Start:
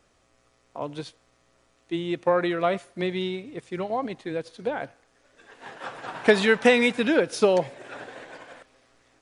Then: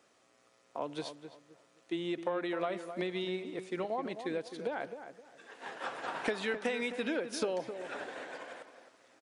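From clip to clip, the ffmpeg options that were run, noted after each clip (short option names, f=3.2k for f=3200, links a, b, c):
-filter_complex "[0:a]highpass=220,acompressor=threshold=-30dB:ratio=5,asplit=2[a][b];[b]adelay=261,lowpass=f=1.6k:p=1,volume=-9dB,asplit=2[c][d];[d]adelay=261,lowpass=f=1.6k:p=1,volume=0.3,asplit=2[e][f];[f]adelay=261,lowpass=f=1.6k:p=1,volume=0.3[g];[c][e][g]amix=inputs=3:normalize=0[h];[a][h]amix=inputs=2:normalize=0,volume=-2dB"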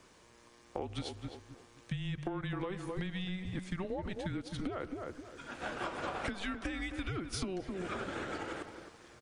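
-af "acompressor=threshold=-42dB:ratio=6,afreqshift=-190,volume=7dB"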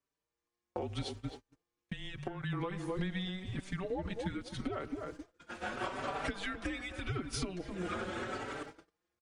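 -filter_complex "[0:a]agate=range=-31dB:threshold=-46dB:ratio=16:detection=peak,asplit=2[a][b];[b]adelay=4.7,afreqshift=0.82[c];[a][c]amix=inputs=2:normalize=1,volume=3.5dB"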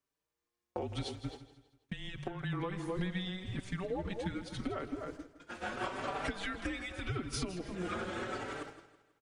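-af "aecho=1:1:162|324|486|648:0.188|0.0772|0.0317|0.013"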